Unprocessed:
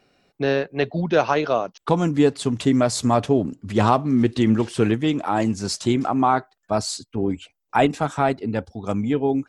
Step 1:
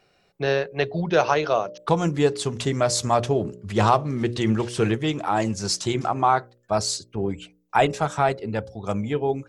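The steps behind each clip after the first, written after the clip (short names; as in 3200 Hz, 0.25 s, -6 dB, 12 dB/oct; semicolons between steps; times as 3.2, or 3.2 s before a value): bell 260 Hz -13.5 dB 0.33 oct; de-hum 60.05 Hz, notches 10; dynamic EQ 5900 Hz, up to +4 dB, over -46 dBFS, Q 2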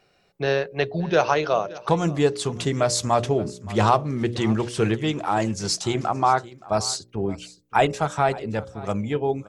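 echo 0.572 s -19.5 dB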